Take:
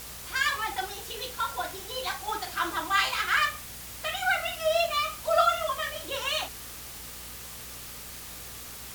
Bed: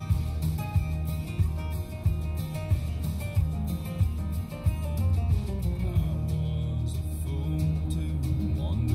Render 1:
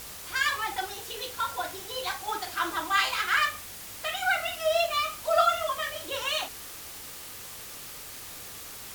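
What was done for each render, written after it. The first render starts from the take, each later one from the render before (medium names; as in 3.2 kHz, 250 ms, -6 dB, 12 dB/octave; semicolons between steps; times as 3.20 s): de-hum 60 Hz, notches 4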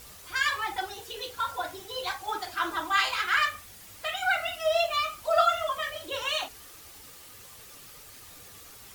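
noise reduction 8 dB, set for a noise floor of -43 dBFS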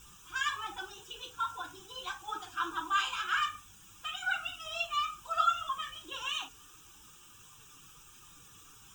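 flange 0.98 Hz, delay 5.5 ms, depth 1.3 ms, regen -35%; static phaser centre 3 kHz, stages 8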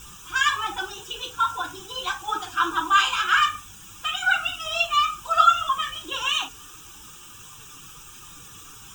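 trim +11.5 dB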